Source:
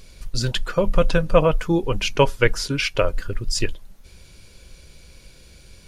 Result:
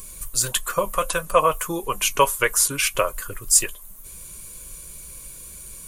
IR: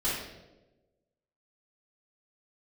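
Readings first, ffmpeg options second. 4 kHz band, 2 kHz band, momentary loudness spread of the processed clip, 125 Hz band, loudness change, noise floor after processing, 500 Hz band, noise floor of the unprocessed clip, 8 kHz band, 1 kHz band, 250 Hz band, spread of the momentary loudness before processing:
-0.5 dB, 0.0 dB, 20 LU, -12.0 dB, +1.0 dB, -41 dBFS, -3.5 dB, -48 dBFS, +14.0 dB, +4.5 dB, -9.5 dB, 8 LU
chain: -filter_complex "[0:a]bandreject=f=850:w=23,acrossover=split=480|4000[a][b][c];[a]acompressor=threshold=-32dB:ratio=6[d];[d][b][c]amix=inputs=3:normalize=0,equalizer=f=1.1k:w=7.3:g=13,flanger=delay=4.8:depth=2.3:regen=-55:speed=1.6:shape=sinusoidal,aexciter=amount=14.1:drive=3.1:freq=7.2k,volume=4dB"

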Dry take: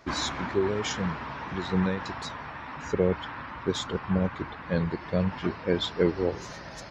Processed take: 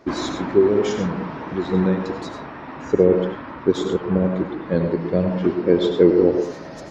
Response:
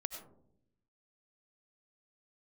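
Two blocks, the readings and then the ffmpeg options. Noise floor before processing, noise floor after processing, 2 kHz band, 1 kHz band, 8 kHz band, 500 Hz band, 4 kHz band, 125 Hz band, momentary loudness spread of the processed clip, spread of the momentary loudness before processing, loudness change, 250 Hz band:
-42 dBFS, -36 dBFS, +0.5 dB, +3.0 dB, n/a, +11.0 dB, -0.5 dB, +5.5 dB, 13 LU, 11 LU, +9.0 dB, +9.5 dB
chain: -filter_complex "[0:a]equalizer=f=340:w=0.67:g=13.5[a];[1:a]atrim=start_sample=2205,afade=t=out:st=0.28:d=0.01,atrim=end_sample=12789[b];[a][b]afir=irnorm=-1:irlink=0"

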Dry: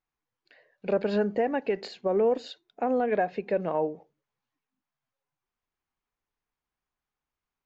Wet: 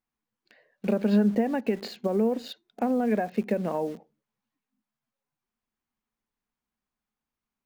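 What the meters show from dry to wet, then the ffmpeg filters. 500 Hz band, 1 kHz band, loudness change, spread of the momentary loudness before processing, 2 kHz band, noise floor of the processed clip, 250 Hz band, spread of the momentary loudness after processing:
-2.0 dB, -2.5 dB, +1.0 dB, 8 LU, -2.5 dB, under -85 dBFS, +7.0 dB, 12 LU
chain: -filter_complex "[0:a]asplit=2[a][b];[b]acrusher=bits=6:mix=0:aa=0.000001,volume=-5.5dB[c];[a][c]amix=inputs=2:normalize=0,acompressor=threshold=-24dB:ratio=4,equalizer=f=220:t=o:w=0.42:g=14,volume=-1.5dB"

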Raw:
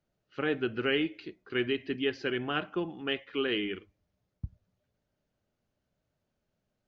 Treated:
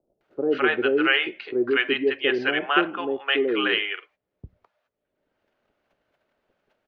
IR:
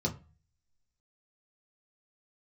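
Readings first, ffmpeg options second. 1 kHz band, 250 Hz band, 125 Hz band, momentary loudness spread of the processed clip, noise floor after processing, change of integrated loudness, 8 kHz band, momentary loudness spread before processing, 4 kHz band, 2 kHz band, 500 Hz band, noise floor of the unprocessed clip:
+12.5 dB, +6.5 dB, -4.5 dB, 8 LU, -82 dBFS, +9.5 dB, n/a, 16 LU, +9.5 dB, +12.5 dB, +9.0 dB, -83 dBFS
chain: -filter_complex "[0:a]lowshelf=f=79:g=5.5,asplit=2[a][b];[b]acompressor=mode=upward:threshold=-34dB:ratio=2.5,volume=0.5dB[c];[a][c]amix=inputs=2:normalize=0,agate=range=-19dB:threshold=-50dB:ratio=16:detection=peak,acrossover=split=330 3300:gain=0.0794 1 0.112[d][e][f];[d][e][f]amix=inputs=3:normalize=0,acrossover=split=600[g][h];[h]adelay=210[i];[g][i]amix=inputs=2:normalize=0,volume=7dB"

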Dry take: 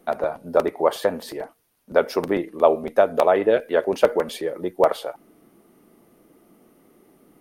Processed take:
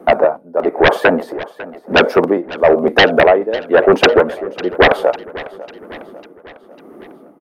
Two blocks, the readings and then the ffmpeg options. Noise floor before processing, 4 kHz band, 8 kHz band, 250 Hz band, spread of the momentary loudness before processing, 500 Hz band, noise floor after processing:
-60 dBFS, +17.0 dB, n/a, +10.0 dB, 13 LU, +7.5 dB, -44 dBFS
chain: -filter_complex "[0:a]tremolo=f=1:d=0.91,acrossover=split=180|1500[a][b][c];[b]aeval=exprs='0.75*sin(PI/2*6.31*val(0)/0.75)':c=same[d];[a][d][c]amix=inputs=3:normalize=0,aecho=1:1:549|1098|1647|2196|2745:0.126|0.068|0.0367|0.0198|0.0107,volume=-1dB"

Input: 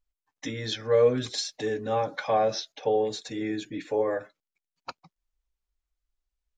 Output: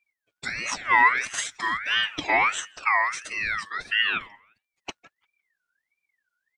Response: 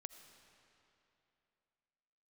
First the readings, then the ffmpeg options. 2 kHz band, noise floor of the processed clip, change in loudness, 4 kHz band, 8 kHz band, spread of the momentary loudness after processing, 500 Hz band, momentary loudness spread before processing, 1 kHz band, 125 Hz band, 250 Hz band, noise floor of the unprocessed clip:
+18.0 dB, under -85 dBFS, +4.0 dB, +6.5 dB, +6.5 dB, 16 LU, -14.5 dB, 16 LU, +7.0 dB, -12.5 dB, -9.0 dB, under -85 dBFS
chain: -filter_complex "[0:a]asplit=2[a][b];[b]adelay=174,lowpass=f=1.6k:p=1,volume=-22.5dB,asplit=2[c][d];[d]adelay=174,lowpass=f=1.6k:p=1,volume=0.26[e];[c][e]amix=inputs=2:normalize=0[f];[a][f]amix=inputs=2:normalize=0,aeval=exprs='val(0)*sin(2*PI*1900*n/s+1900*0.25/1.5*sin(2*PI*1.5*n/s))':c=same,volume=5dB"

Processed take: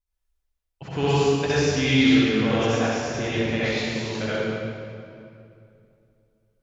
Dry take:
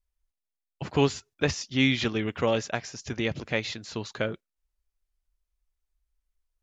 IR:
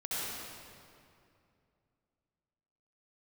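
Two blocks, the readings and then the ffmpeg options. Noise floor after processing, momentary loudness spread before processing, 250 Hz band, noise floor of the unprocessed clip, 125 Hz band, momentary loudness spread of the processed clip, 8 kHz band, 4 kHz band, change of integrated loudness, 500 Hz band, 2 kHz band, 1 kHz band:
-79 dBFS, 12 LU, +7.5 dB, under -85 dBFS, +6.5 dB, 15 LU, n/a, +5.0 dB, +6.0 dB, +6.0 dB, +5.0 dB, +6.5 dB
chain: -filter_complex "[1:a]atrim=start_sample=2205[a];[0:a][a]afir=irnorm=-1:irlink=0"

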